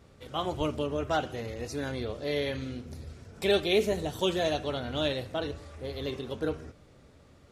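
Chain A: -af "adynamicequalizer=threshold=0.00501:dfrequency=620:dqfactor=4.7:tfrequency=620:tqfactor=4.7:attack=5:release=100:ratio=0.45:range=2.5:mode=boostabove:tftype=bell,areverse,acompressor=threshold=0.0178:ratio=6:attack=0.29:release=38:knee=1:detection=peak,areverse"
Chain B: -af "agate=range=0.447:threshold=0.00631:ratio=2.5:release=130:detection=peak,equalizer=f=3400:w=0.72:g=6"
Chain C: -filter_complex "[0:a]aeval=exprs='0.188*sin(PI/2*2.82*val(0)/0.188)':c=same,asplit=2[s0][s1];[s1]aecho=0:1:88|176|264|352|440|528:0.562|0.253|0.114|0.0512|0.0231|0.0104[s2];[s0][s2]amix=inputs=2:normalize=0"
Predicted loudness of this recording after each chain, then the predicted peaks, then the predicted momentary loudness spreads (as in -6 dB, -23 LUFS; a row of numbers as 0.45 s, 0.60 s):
-40.5 LUFS, -29.5 LUFS, -20.5 LUFS; -30.0 dBFS, -9.0 dBFS, -9.0 dBFS; 7 LU, 14 LU, 8 LU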